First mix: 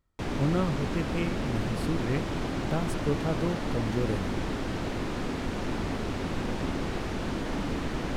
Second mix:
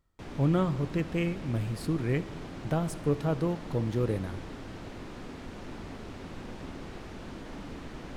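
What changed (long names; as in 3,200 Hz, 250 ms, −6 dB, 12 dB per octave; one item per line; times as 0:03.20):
background −10.5 dB
reverb: on, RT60 1.5 s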